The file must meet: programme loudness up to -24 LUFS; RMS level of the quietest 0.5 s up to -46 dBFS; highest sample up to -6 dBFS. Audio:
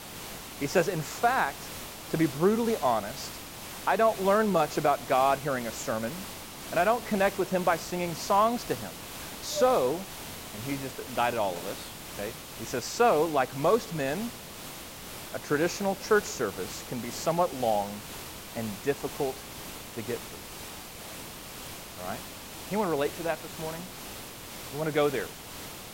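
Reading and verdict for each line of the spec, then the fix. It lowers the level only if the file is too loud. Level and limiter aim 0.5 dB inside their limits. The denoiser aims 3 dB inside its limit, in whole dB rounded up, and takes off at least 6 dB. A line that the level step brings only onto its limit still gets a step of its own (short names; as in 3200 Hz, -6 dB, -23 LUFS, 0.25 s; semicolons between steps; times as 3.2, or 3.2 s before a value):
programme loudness -29.5 LUFS: OK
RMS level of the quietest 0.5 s -42 dBFS: fail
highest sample -12.0 dBFS: OK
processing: denoiser 7 dB, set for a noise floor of -42 dBFS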